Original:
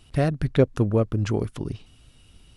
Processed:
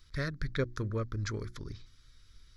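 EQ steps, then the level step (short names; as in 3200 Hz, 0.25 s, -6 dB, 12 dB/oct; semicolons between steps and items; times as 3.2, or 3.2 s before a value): bell 210 Hz -14 dB 2.9 oct; notches 60/120/180/240/300/360 Hz; fixed phaser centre 2800 Hz, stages 6; 0.0 dB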